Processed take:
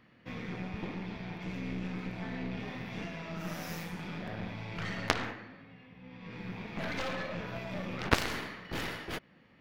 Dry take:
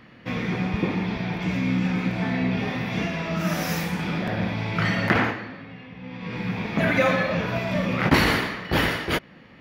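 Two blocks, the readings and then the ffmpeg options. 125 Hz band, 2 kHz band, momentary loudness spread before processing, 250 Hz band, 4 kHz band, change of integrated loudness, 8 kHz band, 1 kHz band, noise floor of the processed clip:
-14.0 dB, -13.0 dB, 10 LU, -14.0 dB, -10.5 dB, -13.0 dB, -8.0 dB, -12.0 dB, -61 dBFS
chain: -af "aeval=exprs='0.631*(cos(1*acos(clip(val(0)/0.631,-1,1)))-cos(1*PI/2))+0.282*(cos(3*acos(clip(val(0)/0.631,-1,1)))-cos(3*PI/2))+0.0141*(cos(5*acos(clip(val(0)/0.631,-1,1)))-cos(5*PI/2))+0.0112*(cos(8*acos(clip(val(0)/0.631,-1,1)))-cos(8*PI/2))':c=same"

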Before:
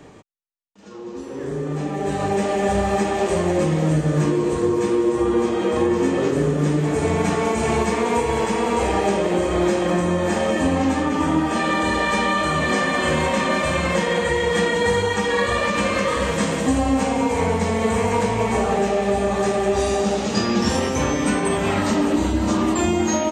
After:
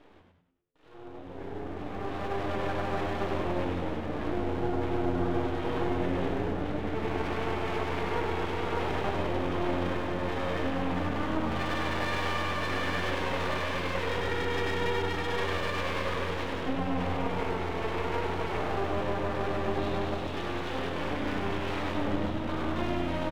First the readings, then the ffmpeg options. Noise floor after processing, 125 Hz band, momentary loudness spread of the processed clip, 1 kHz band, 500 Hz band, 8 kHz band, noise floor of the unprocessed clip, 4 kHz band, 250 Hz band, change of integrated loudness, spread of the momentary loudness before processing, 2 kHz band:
-43 dBFS, -10.0 dB, 3 LU, -10.0 dB, -12.0 dB, -22.0 dB, -33 dBFS, -9.5 dB, -12.5 dB, -11.0 dB, 2 LU, -9.5 dB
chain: -filter_complex "[0:a]afftfilt=real='re*between(b*sr/4096,250,3900)':imag='im*between(b*sr/4096,250,3900)':win_size=4096:overlap=0.75,aeval=exprs='max(val(0),0)':c=same,asplit=7[s0][s1][s2][s3][s4][s5][s6];[s1]adelay=99,afreqshift=-88,volume=0.631[s7];[s2]adelay=198,afreqshift=-176,volume=0.285[s8];[s3]adelay=297,afreqshift=-264,volume=0.127[s9];[s4]adelay=396,afreqshift=-352,volume=0.0575[s10];[s5]adelay=495,afreqshift=-440,volume=0.026[s11];[s6]adelay=594,afreqshift=-528,volume=0.0116[s12];[s0][s7][s8][s9][s10][s11][s12]amix=inputs=7:normalize=0,volume=0.422"

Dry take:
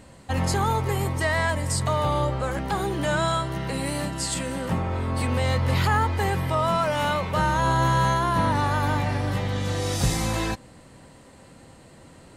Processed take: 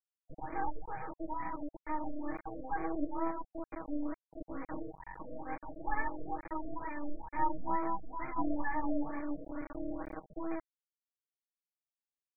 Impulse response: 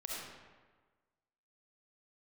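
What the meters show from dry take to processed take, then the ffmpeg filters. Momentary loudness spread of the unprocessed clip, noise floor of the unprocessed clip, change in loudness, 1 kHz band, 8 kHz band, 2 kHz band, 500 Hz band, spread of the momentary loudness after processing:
6 LU, -50 dBFS, -15.0 dB, -13.0 dB, under -40 dB, -16.5 dB, -16.0 dB, 9 LU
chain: -filter_complex "[0:a]asplit=3[s0][s1][s2];[s0]bandpass=f=300:t=q:w=8,volume=1[s3];[s1]bandpass=f=870:t=q:w=8,volume=0.501[s4];[s2]bandpass=f=2240:t=q:w=8,volume=0.355[s5];[s3][s4][s5]amix=inputs=3:normalize=0,acrossover=split=300 2400:gain=0.112 1 0.0708[s6][s7][s8];[s6][s7][s8]amix=inputs=3:normalize=0,asplit=2[s9][s10];[1:a]atrim=start_sample=2205[s11];[s10][s11]afir=irnorm=-1:irlink=0,volume=0.316[s12];[s9][s12]amix=inputs=2:normalize=0,flanger=delay=19.5:depth=5.3:speed=0.49,equalizer=f=11000:w=1.2:g=14,asplit=2[s13][s14];[s14]adelay=569,lowpass=f=3500:p=1,volume=0.0708,asplit=2[s15][s16];[s16]adelay=569,lowpass=f=3500:p=1,volume=0.15[s17];[s13][s15][s17]amix=inputs=3:normalize=0,afftfilt=real='re*gte(hypot(re,im),0.02)':imag='im*gte(hypot(re,im),0.02)':win_size=1024:overlap=0.75,acrusher=bits=5:dc=4:mix=0:aa=0.000001,adynamicsmooth=sensitivity=0.5:basefreq=6900,aecho=1:1:6.3:0.97,afftfilt=real='re*lt(b*sr/1024,660*pow(2500/660,0.5+0.5*sin(2*PI*2.2*pts/sr)))':imag='im*lt(b*sr/1024,660*pow(2500/660,0.5+0.5*sin(2*PI*2.2*pts/sr)))':win_size=1024:overlap=0.75,volume=2"

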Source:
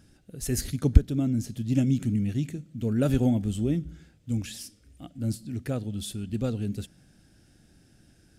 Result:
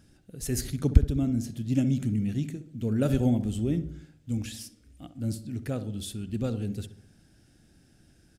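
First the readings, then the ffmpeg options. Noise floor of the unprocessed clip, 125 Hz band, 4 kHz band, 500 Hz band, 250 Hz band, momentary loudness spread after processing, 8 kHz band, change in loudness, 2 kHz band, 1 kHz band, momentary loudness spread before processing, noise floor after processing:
-61 dBFS, -1.0 dB, -1.5 dB, -1.0 dB, -1.0 dB, 15 LU, -1.5 dB, -1.0 dB, -1.5 dB, -1.0 dB, 16 LU, -61 dBFS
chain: -filter_complex "[0:a]asplit=2[s0][s1];[s1]adelay=65,lowpass=f=1300:p=1,volume=0.282,asplit=2[s2][s3];[s3]adelay=65,lowpass=f=1300:p=1,volume=0.55,asplit=2[s4][s5];[s5]adelay=65,lowpass=f=1300:p=1,volume=0.55,asplit=2[s6][s7];[s7]adelay=65,lowpass=f=1300:p=1,volume=0.55,asplit=2[s8][s9];[s9]adelay=65,lowpass=f=1300:p=1,volume=0.55,asplit=2[s10][s11];[s11]adelay=65,lowpass=f=1300:p=1,volume=0.55[s12];[s0][s2][s4][s6][s8][s10][s12]amix=inputs=7:normalize=0,volume=0.841"

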